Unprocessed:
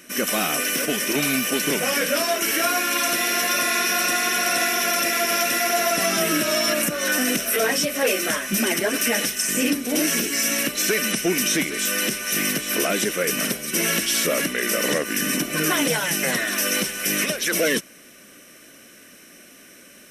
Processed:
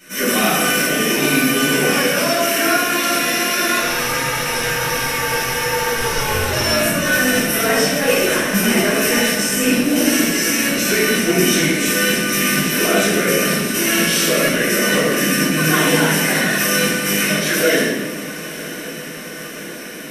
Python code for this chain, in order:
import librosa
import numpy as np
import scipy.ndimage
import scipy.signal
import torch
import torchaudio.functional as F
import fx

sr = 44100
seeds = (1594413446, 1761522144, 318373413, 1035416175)

y = fx.rider(x, sr, range_db=10, speed_s=2.0)
y = fx.ring_mod(y, sr, carrier_hz=210.0, at=(3.78, 6.51), fade=0.02)
y = fx.echo_diffused(y, sr, ms=1056, feedback_pct=76, wet_db=-15.5)
y = fx.room_shoebox(y, sr, seeds[0], volume_m3=800.0, walls='mixed', distance_m=7.6)
y = y * 10.0 ** (-8.0 / 20.0)